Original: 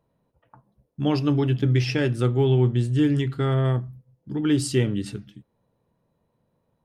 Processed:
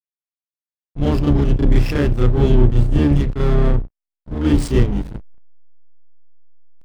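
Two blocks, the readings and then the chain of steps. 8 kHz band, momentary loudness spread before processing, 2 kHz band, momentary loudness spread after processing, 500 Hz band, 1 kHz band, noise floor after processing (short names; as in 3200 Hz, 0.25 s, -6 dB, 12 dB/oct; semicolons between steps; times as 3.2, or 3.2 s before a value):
n/a, 10 LU, +1.5 dB, 10 LU, +3.5 dB, +4.0 dB, under -85 dBFS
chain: octaver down 2 oct, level +2 dB; backlash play -22.5 dBFS; reverse echo 35 ms -4.5 dB; gain +3.5 dB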